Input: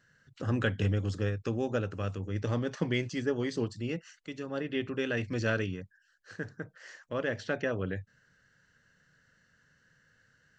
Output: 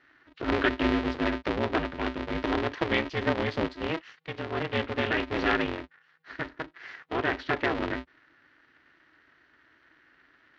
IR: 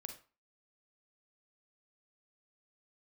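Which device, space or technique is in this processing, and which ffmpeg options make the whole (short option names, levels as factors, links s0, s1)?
ring modulator pedal into a guitar cabinet: -af "aeval=exprs='val(0)*sgn(sin(2*PI*160*n/s))':c=same,highpass=85,equalizer=f=86:t=q:w=4:g=-5,equalizer=f=190:t=q:w=4:g=-7,equalizer=f=650:t=q:w=4:g=-4,equalizer=f=1900:t=q:w=4:g=3,lowpass=f=4000:w=0.5412,lowpass=f=4000:w=1.3066,volume=1.78"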